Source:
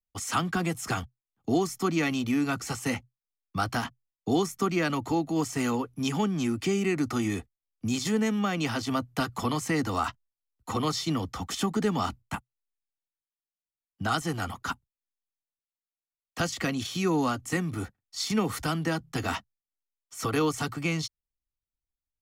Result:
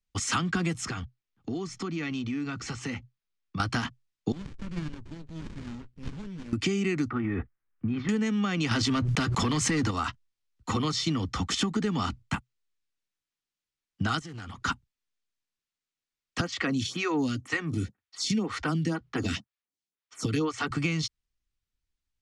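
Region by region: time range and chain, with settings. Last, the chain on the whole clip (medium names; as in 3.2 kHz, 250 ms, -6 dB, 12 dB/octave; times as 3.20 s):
0.85–3.60 s: distance through air 72 m + compression 3:1, threshold -40 dBFS
4.32–6.53 s: amplifier tone stack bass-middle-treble 5-5-5 + sliding maximum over 65 samples
7.10–8.09 s: transient shaper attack +4 dB, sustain +11 dB + four-pole ladder low-pass 2 kHz, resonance 35%
8.71–9.91 s: waveshaping leveller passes 2 + swell ahead of each attack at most 29 dB/s
14.19–14.62 s: compression 20:1, threshold -42 dBFS + loudspeaker Doppler distortion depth 0.16 ms
16.41–20.71 s: high-pass 72 Hz + lamp-driven phase shifter 2 Hz
whole clip: Bessel low-pass 5.9 kHz, order 6; peaking EQ 690 Hz -9 dB 1.3 oct; compression, threshold -33 dBFS; trim +8.5 dB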